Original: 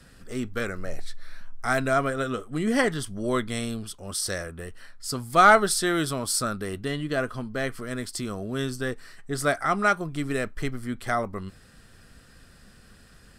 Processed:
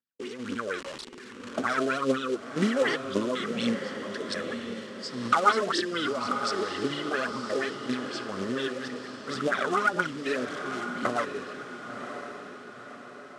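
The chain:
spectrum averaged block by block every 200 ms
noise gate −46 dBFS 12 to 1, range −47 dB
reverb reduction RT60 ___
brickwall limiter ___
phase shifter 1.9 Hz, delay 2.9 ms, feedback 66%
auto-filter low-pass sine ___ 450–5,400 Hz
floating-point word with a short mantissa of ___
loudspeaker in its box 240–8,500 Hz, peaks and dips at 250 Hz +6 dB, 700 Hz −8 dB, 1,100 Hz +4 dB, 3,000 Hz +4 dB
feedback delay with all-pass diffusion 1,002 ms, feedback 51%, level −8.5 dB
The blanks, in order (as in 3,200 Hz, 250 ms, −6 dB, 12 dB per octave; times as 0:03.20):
0.85 s, −17 dBFS, 4.2 Hz, 2 bits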